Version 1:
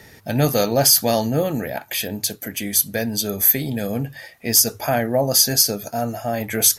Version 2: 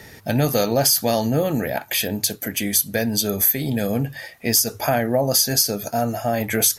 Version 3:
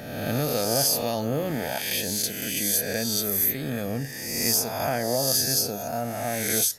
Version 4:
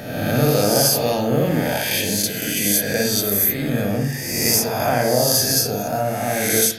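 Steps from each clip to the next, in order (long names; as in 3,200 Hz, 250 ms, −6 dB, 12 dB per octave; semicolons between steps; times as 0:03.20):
downward compressor 3 to 1, threshold −19 dBFS, peak gain reduction 7.5 dB; level +3 dB
peak hold with a rise ahead of every peak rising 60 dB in 1.29 s; level −9 dB
convolution reverb RT60 0.60 s, pre-delay 49 ms, DRR 1 dB; level +5 dB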